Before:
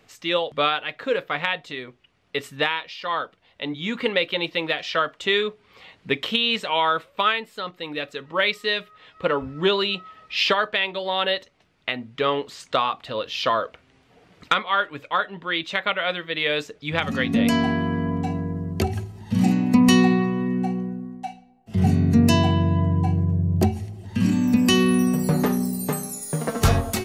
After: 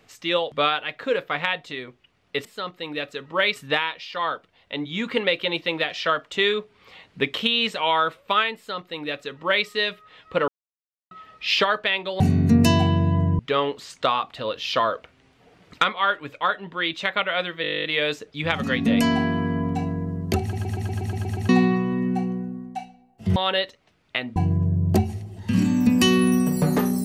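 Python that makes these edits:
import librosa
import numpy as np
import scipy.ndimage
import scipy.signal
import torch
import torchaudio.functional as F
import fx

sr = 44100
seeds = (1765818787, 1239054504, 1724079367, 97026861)

y = fx.edit(x, sr, fx.duplicate(start_s=7.45, length_s=1.11, to_s=2.45),
    fx.silence(start_s=9.37, length_s=0.63),
    fx.swap(start_s=11.09, length_s=1.0, other_s=21.84, other_length_s=1.19),
    fx.stutter(start_s=16.32, slice_s=0.02, count=12),
    fx.stutter_over(start_s=18.89, slice_s=0.12, count=9), tone=tone)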